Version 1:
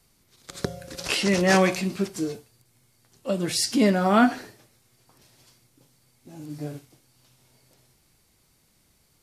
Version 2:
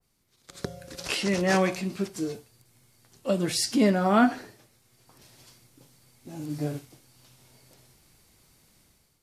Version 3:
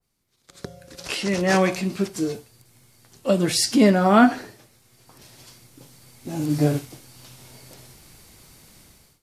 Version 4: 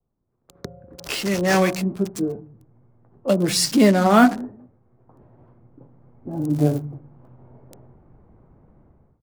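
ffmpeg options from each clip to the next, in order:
ffmpeg -i in.wav -af "dynaudnorm=framelen=440:gausssize=3:maxgain=12dB,adynamicequalizer=threshold=0.0316:dfrequency=1800:dqfactor=0.7:tfrequency=1800:tqfactor=0.7:attack=5:release=100:ratio=0.375:range=1.5:mode=cutabove:tftype=highshelf,volume=-8.5dB" out.wav
ffmpeg -i in.wav -af "dynaudnorm=framelen=910:gausssize=3:maxgain=14.5dB,volume=-3dB" out.wav
ffmpeg -i in.wav -filter_complex "[0:a]acrossover=split=220|1100[link_01][link_02][link_03];[link_01]aecho=1:1:192|384:0.335|0.0536[link_04];[link_03]acrusher=bits=4:mix=0:aa=0.5[link_05];[link_04][link_02][link_05]amix=inputs=3:normalize=0,volume=1dB" out.wav

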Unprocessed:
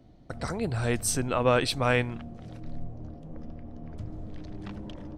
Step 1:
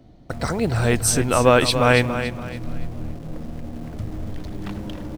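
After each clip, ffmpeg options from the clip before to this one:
ffmpeg -i in.wav -filter_complex "[0:a]asplit=2[link_01][link_02];[link_02]acrusher=bits=6:mix=0:aa=0.000001,volume=-11dB[link_03];[link_01][link_03]amix=inputs=2:normalize=0,aecho=1:1:283|566|849|1132:0.316|0.101|0.0324|0.0104,volume=6dB" out.wav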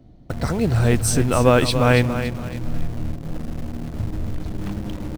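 ffmpeg -i in.wav -filter_complex "[0:a]lowshelf=frequency=350:gain=7.5,asplit=2[link_01][link_02];[link_02]acrusher=bits=3:mix=0:aa=0.000001,volume=-11.5dB[link_03];[link_01][link_03]amix=inputs=2:normalize=0,volume=-5dB" out.wav

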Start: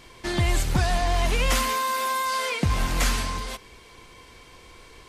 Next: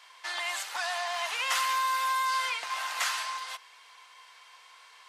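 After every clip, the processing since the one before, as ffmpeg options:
ffmpeg -i in.wav -af "highpass=frequency=840:width=0.5412,highpass=frequency=840:width=1.3066,highshelf=frequency=6800:gain=-7.5,bandreject=frequency=2300:width=24,volume=-1dB" out.wav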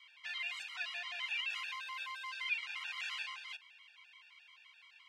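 ffmpeg -i in.wav -af "alimiter=level_in=0.5dB:limit=-24dB:level=0:latency=1:release=26,volume=-0.5dB,bandpass=frequency=2600:width_type=q:width=3.7:csg=0,afftfilt=real='re*gt(sin(2*PI*5.8*pts/sr)*(1-2*mod(floor(b*sr/1024/470),2)),0)':imag='im*gt(sin(2*PI*5.8*pts/sr)*(1-2*mod(floor(b*sr/1024/470),2)),0)':win_size=1024:overlap=0.75,volume=4dB" out.wav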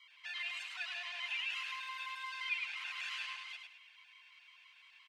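ffmpeg -i in.wav -af "aecho=1:1:104|208|312|416:0.562|0.169|0.0506|0.0152,volume=-1.5dB" out.wav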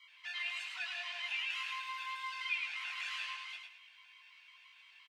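ffmpeg -i in.wav -filter_complex "[0:a]asplit=2[link_01][link_02];[link_02]adelay=20,volume=-5dB[link_03];[link_01][link_03]amix=inputs=2:normalize=0" out.wav

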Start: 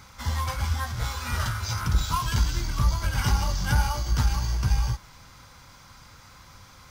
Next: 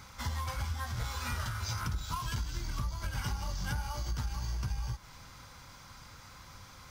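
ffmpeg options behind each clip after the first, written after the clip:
ffmpeg -i in.wav -af "acompressor=threshold=-30dB:ratio=6,volume=-2dB" out.wav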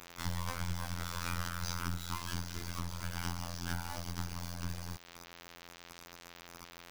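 ffmpeg -i in.wav -af "afftfilt=real='hypot(re,im)*cos(PI*b)':imag='0':win_size=2048:overlap=0.75,acrusher=bits=5:dc=4:mix=0:aa=0.000001,volume=3dB" out.wav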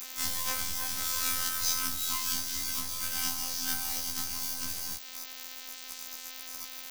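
ffmpeg -i in.wav -af "crystalizer=i=6.5:c=0,afftfilt=real='re*1.73*eq(mod(b,3),0)':imag='im*1.73*eq(mod(b,3),0)':win_size=2048:overlap=0.75" out.wav

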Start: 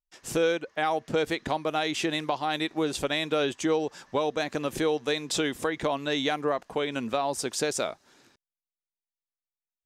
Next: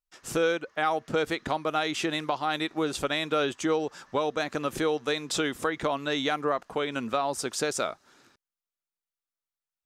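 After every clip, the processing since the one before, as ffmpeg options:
ffmpeg -i in.wav -af "equalizer=frequency=1300:width=3.3:gain=6.5,volume=-1dB" out.wav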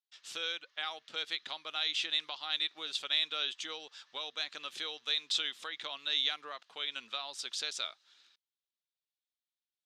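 ffmpeg -i in.wav -af "bandpass=frequency=3600:width_type=q:width=2.9:csg=0,volume=4dB" out.wav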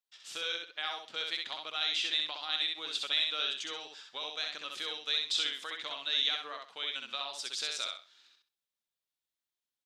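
ffmpeg -i in.wav -af "aecho=1:1:65|130|195:0.668|0.16|0.0385" out.wav

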